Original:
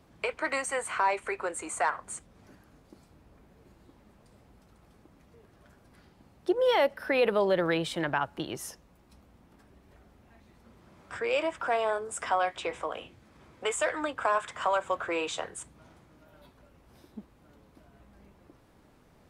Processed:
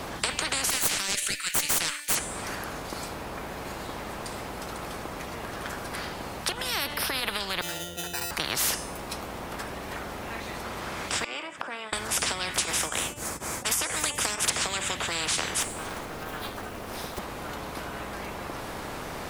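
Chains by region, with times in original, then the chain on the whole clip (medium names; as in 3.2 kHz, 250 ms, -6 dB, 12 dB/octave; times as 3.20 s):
0.70–2.15 s: steep high-pass 2.1 kHz + treble shelf 5.3 kHz +9.5 dB + valve stage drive 24 dB, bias 0.75
7.61–8.31 s: pitch-class resonator F, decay 0.63 s + sample-rate reducer 3.3 kHz
11.24–11.93 s: high-pass 180 Hz + inverted gate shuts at -28 dBFS, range -27 dB
12.54–14.50 s: resonant high shelf 5.3 kHz +13 dB, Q 1.5 + tremolo of two beating tones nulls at 4.1 Hz
15.61–17.19 s: block-companded coder 5-bit + high-pass 56 Hz + ring modulator 150 Hz
whole clip: de-hum 293.8 Hz, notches 37; compression, threshold -29 dBFS; spectrum-flattening compressor 10:1; trim +9 dB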